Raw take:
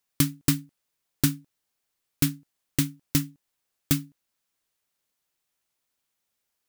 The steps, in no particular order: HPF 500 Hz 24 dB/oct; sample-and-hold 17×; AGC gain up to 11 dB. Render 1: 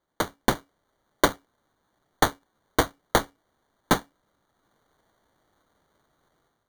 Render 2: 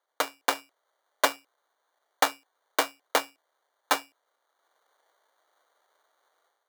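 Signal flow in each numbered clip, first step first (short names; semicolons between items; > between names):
HPF > AGC > sample-and-hold; AGC > sample-and-hold > HPF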